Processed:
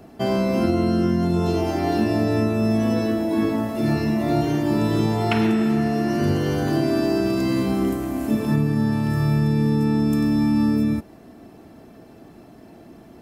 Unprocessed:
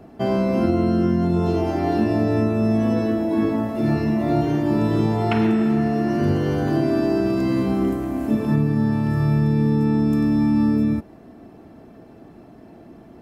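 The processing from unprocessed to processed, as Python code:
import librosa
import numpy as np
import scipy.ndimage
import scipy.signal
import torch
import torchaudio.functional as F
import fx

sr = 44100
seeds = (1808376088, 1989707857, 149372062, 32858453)

y = fx.high_shelf(x, sr, hz=3100.0, db=10.0)
y = y * 10.0 ** (-1.0 / 20.0)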